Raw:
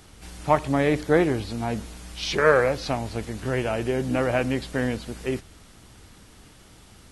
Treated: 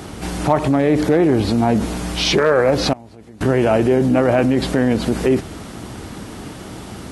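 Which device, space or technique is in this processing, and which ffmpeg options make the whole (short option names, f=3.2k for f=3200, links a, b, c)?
mastering chain: -filter_complex "[0:a]equalizer=f=490:t=o:w=0.43:g=-3,acompressor=threshold=-25dB:ratio=2.5,tiltshelf=f=970:g=7.5,asoftclip=type=hard:threshold=-13.5dB,alimiter=level_in=23dB:limit=-1dB:release=50:level=0:latency=1,highpass=f=300:p=1,asettb=1/sr,asplit=3[a][b][c];[a]atrim=end=2.934[d];[b]atrim=start=2.93:end=3.41,asetpts=PTS-STARTPTS,afade=t=in:d=0.004:c=qsin,afade=t=out:st=0.476:d=0.004:c=qsin,agate=range=-23dB:threshold=-6dB:ratio=16:detection=peak[e];[c]atrim=start=3.406[f];[d][e]acrossfade=d=0.004:c1=hsin:c2=qsin[g];[g][f]acrossfade=d=0.004:c1=qsin:c2=hsin,volume=-3.5dB"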